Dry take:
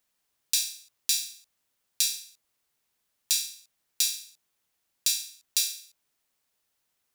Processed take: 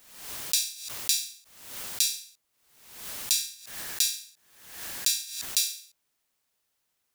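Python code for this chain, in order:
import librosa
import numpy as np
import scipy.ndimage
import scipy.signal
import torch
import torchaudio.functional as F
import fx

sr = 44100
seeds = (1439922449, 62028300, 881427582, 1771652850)

y = fx.peak_eq(x, sr, hz=1700.0, db=8.5, octaves=0.2, at=(3.38, 5.45))
y = fx.pre_swell(y, sr, db_per_s=68.0)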